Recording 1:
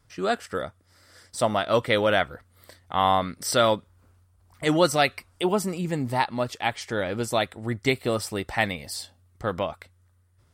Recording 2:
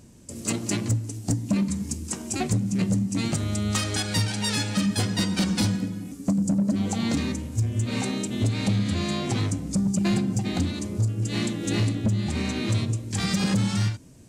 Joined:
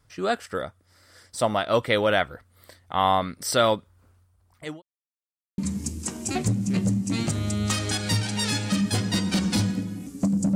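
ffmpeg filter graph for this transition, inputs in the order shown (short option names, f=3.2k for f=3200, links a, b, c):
-filter_complex "[0:a]apad=whole_dur=10.55,atrim=end=10.55,asplit=2[a][b];[a]atrim=end=4.82,asetpts=PTS-STARTPTS,afade=t=out:st=4.01:d=0.81:c=qsin[c];[b]atrim=start=4.82:end=5.58,asetpts=PTS-STARTPTS,volume=0[d];[1:a]atrim=start=1.63:end=6.6,asetpts=PTS-STARTPTS,afade=t=in:d=0.004:c=hsin[e];[c][d][e]concat=n=3:v=0:a=1"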